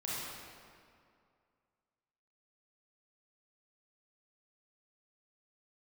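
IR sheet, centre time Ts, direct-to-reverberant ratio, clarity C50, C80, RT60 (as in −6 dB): 151 ms, −8.0 dB, −4.5 dB, −1.5 dB, 2.3 s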